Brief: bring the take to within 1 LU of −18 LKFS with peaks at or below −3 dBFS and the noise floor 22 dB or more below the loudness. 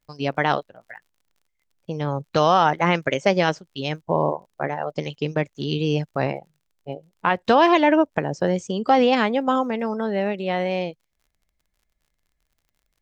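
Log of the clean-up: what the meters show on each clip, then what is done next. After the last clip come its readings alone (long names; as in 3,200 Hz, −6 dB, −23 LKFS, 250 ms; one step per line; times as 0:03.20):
crackle rate 43 per second; integrated loudness −22.0 LKFS; sample peak −4.5 dBFS; target loudness −18.0 LKFS
→ click removal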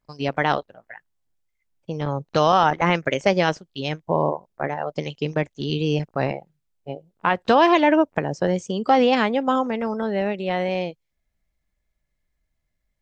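crackle rate 0 per second; integrated loudness −22.0 LKFS; sample peak −4.5 dBFS; target loudness −18.0 LKFS
→ level +4 dB
brickwall limiter −3 dBFS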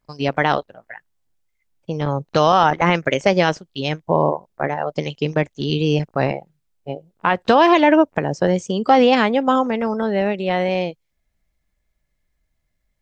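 integrated loudness −18.5 LKFS; sample peak −3.0 dBFS; background noise floor −72 dBFS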